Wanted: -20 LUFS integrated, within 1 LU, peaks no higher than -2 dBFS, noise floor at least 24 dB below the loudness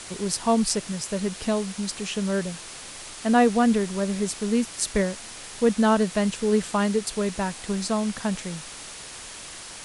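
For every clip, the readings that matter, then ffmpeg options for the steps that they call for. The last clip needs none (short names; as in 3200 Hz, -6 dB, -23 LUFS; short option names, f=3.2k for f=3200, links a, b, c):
noise floor -40 dBFS; noise floor target -49 dBFS; loudness -25.0 LUFS; peak -5.0 dBFS; loudness target -20.0 LUFS
-> -af "afftdn=nr=9:nf=-40"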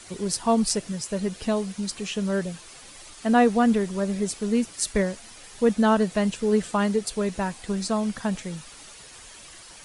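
noise floor -46 dBFS; noise floor target -49 dBFS
-> -af "afftdn=nr=6:nf=-46"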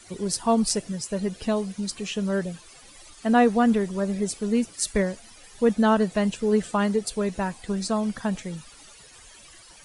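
noise floor -50 dBFS; loudness -25.0 LUFS; peak -5.5 dBFS; loudness target -20.0 LUFS
-> -af "volume=5dB,alimiter=limit=-2dB:level=0:latency=1"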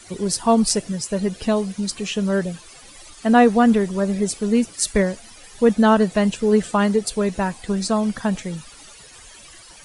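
loudness -20.0 LUFS; peak -2.0 dBFS; noise floor -45 dBFS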